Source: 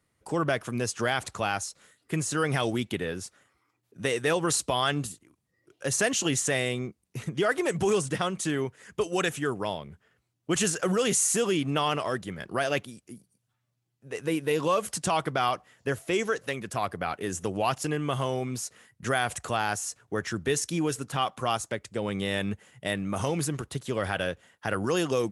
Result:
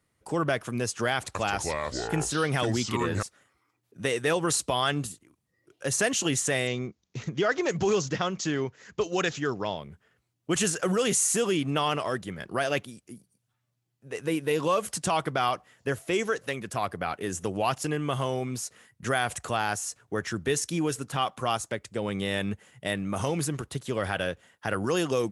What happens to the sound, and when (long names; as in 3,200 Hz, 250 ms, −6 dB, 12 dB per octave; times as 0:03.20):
0:01.17–0:03.23: delay with pitch and tempo change per echo 178 ms, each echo −5 semitones, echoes 2
0:06.67–0:09.78: bad sample-rate conversion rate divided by 3×, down none, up filtered